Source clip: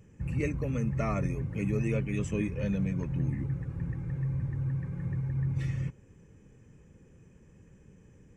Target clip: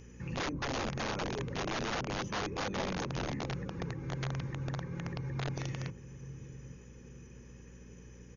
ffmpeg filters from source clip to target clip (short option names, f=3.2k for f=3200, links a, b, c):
-filter_complex "[0:a]asuperstop=centerf=640:order=20:qfactor=7,equalizer=f=690:w=4.9:g=-11,acrossover=split=920[a][b];[b]acompressor=threshold=-58dB:ratio=16[c];[a][c]amix=inputs=2:normalize=0,asplit=2[d][e];[e]adelay=846,lowpass=f=900:p=1,volume=-14dB,asplit=2[f][g];[g]adelay=846,lowpass=f=900:p=1,volume=0.28,asplit=2[h][i];[i]adelay=846,lowpass=f=900:p=1,volume=0.28[j];[d][f][h][j]amix=inputs=4:normalize=0,acrossover=split=130|540[k][l][m];[k]acompressor=threshold=-42dB:ratio=4[n];[l]acompressor=threshold=-32dB:ratio=4[o];[m]acompressor=threshold=-49dB:ratio=4[p];[n][o][p]amix=inputs=3:normalize=0,aeval=exprs='val(0)+0.00355*(sin(2*PI*60*n/s)+sin(2*PI*2*60*n/s)/2+sin(2*PI*3*60*n/s)/3+sin(2*PI*4*60*n/s)/4+sin(2*PI*5*60*n/s)/5)':c=same,bass=f=250:g=-10,treble=f=4k:g=9,bandreject=f=50:t=h:w=6,bandreject=f=100:t=h:w=6,bandreject=f=150:t=h:w=6,bandreject=f=200:t=h:w=6,bandreject=f=250:t=h:w=6,bandreject=f=300:t=h:w=6,aeval=exprs='(mod(63.1*val(0)+1,2)-1)/63.1':c=same,volume=6.5dB" -ar 48000 -c:a ac3 -b:a 48k